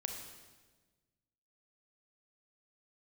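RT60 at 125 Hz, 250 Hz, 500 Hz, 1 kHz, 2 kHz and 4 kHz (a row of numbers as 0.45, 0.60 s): 1.9, 1.7, 1.4, 1.2, 1.2, 1.2 s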